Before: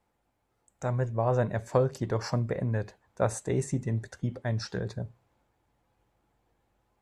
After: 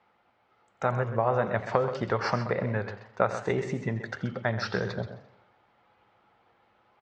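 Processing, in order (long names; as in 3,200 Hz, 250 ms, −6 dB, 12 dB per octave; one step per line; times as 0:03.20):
downward compressor 4 to 1, threshold −30 dBFS, peak gain reduction 10 dB
loudspeaker in its box 140–4,600 Hz, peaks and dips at 150 Hz −6 dB, 290 Hz −7 dB, 810 Hz +3 dB, 1,300 Hz +9 dB, 2,100 Hz +5 dB, 3,000 Hz +4 dB
single-tap delay 129 ms −11 dB
feedback echo with a swinging delay time 86 ms, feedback 51%, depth 160 cents, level −15 dB
level +7.5 dB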